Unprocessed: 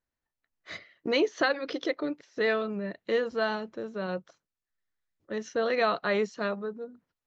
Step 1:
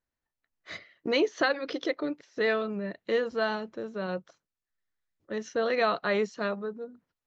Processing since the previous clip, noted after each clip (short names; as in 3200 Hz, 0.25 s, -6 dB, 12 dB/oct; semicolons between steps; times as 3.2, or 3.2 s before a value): nothing audible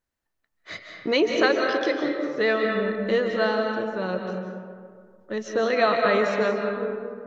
reverb RT60 2.1 s, pre-delay 0.115 s, DRR 2 dB; gain +4 dB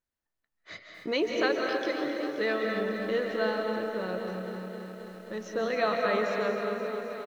echo 0.296 s -15.5 dB; lo-fi delay 0.264 s, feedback 80%, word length 8-bit, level -11 dB; gain -7 dB